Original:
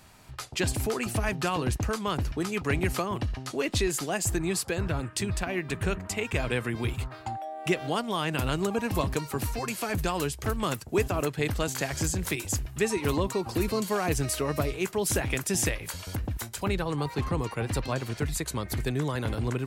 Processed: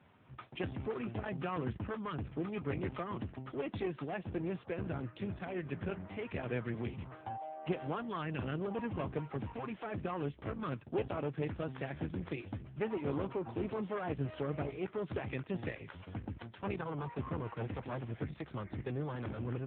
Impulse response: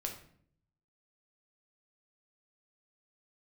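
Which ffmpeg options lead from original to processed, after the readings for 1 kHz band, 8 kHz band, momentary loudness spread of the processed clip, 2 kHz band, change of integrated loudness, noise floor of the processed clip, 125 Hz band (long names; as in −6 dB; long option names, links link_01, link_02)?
−9.5 dB, below −40 dB, 5 LU, −13.0 dB, −10.0 dB, −57 dBFS, −9.5 dB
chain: -af "aemphasis=mode=reproduction:type=75kf,aeval=exprs='clip(val(0),-1,0.02)':channel_layout=same,volume=-4.5dB" -ar 8000 -c:a libopencore_amrnb -b:a 6700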